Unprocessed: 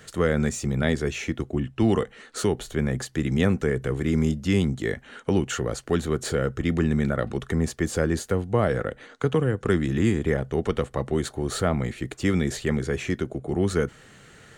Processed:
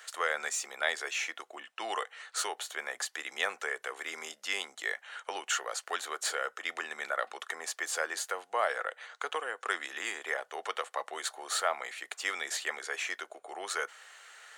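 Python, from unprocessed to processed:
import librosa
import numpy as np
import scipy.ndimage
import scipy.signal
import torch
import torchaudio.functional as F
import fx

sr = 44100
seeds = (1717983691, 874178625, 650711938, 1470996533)

y = scipy.signal.sosfilt(scipy.signal.butter(4, 720.0, 'highpass', fs=sr, output='sos'), x)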